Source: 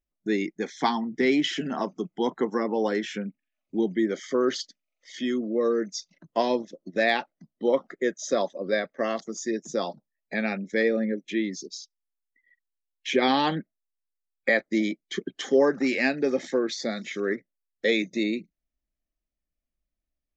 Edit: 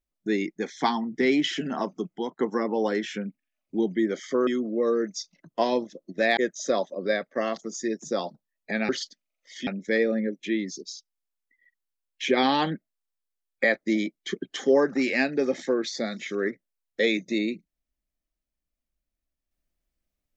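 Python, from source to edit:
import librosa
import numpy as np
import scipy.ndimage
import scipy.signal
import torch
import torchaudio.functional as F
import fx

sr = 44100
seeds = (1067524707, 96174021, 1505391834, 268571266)

y = fx.edit(x, sr, fx.fade_out_to(start_s=2.11, length_s=0.28, floor_db=-23.5),
    fx.move(start_s=4.47, length_s=0.78, to_s=10.52),
    fx.cut(start_s=7.15, length_s=0.85), tone=tone)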